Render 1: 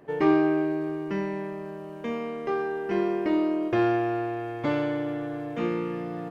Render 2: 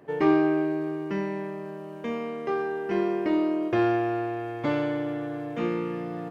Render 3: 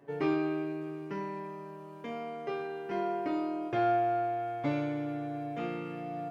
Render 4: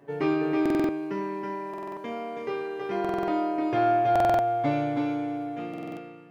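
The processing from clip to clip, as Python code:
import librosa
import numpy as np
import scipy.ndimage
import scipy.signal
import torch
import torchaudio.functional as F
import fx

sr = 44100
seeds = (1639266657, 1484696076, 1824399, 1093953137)

y1 = scipy.signal.sosfilt(scipy.signal.butter(2, 48.0, 'highpass', fs=sr, output='sos'), x)
y2 = fx.comb_fb(y1, sr, f0_hz=140.0, decay_s=0.2, harmonics='all', damping=0.0, mix_pct=90)
y2 = y2 * 10.0 ** (3.0 / 20.0)
y3 = fx.fade_out_tail(y2, sr, length_s=1.37)
y3 = y3 + 10.0 ** (-3.5 / 20.0) * np.pad(y3, (int(324 * sr / 1000.0), 0))[:len(y3)]
y3 = fx.buffer_glitch(y3, sr, at_s=(0.61, 1.69, 3.0, 4.11, 5.69), block=2048, repeats=5)
y3 = y3 * 10.0 ** (4.0 / 20.0)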